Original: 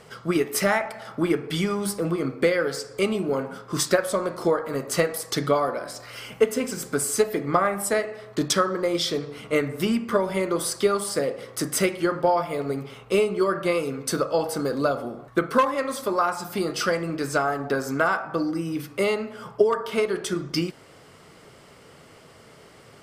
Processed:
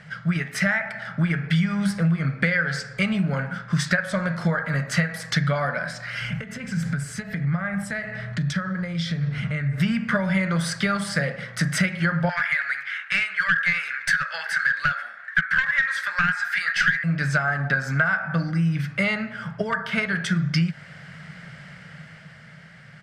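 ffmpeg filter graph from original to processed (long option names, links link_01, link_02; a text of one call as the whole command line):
ffmpeg -i in.wav -filter_complex "[0:a]asettb=1/sr,asplit=3[link_01][link_02][link_03];[link_01]atrim=end=6.214[link_04];[link_02]atrim=start=6.21:end=9.78,asetpts=PTS-STARTPTS,afade=type=in:duration=0.004:curve=qsin,afade=type=out:start_time=3.566:duration=0.004:curve=qsin,equalizer=frequency=75:width_type=o:width=2.3:gain=12.5,acompressor=threshold=-32dB:ratio=5:attack=3.2:release=140:knee=1:detection=peak[link_05];[link_03]atrim=start=9.776[link_06];[link_04][link_05]acrossfade=duration=0.004:curve1=hsin:curve2=qsin[link_07];[link_07][link_06]acrossfade=duration=0.004:curve1=qsin:curve2=hsin,asettb=1/sr,asplit=3[link_08][link_09][link_10];[link_08]atrim=end=12.294[link_11];[link_09]atrim=start=12.29:end=17.04,asetpts=PTS-STARTPTS,afade=type=in:duration=0.004:curve=qsin,afade=type=out:start_time=4.746:duration=0.004:curve=qsin,highpass=frequency=1700:width_type=q:width=5,aeval=exprs='clip(val(0),-1,0.0501)':channel_layout=same[link_12];[link_10]atrim=start=17.036[link_13];[link_11][link_12]acrossfade=duration=0.004:curve1=hsin:curve2=qsin[link_14];[link_14][link_13]acrossfade=duration=0.004:curve1=qsin:curve2=hsin,dynaudnorm=framelen=110:gausssize=21:maxgain=5dB,firequalizer=gain_entry='entry(100,0);entry(160,14);entry(270,-11);entry(390,-18);entry(590,-3);entry(1100,-7);entry(1600,12);entry(2700,1);entry(13000,-18)':delay=0.05:min_phase=1,acompressor=threshold=-18dB:ratio=6" out.wav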